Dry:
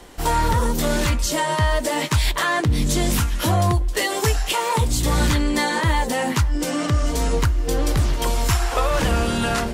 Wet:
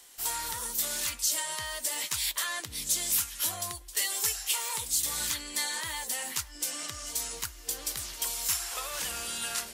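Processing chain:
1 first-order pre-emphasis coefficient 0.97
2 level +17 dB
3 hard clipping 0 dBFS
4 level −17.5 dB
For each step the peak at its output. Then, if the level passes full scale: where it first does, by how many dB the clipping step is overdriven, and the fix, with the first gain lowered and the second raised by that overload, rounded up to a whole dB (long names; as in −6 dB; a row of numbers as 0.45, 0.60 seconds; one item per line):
−10.5, +6.5, 0.0, −17.5 dBFS
step 2, 6.5 dB
step 2 +10 dB, step 4 −10.5 dB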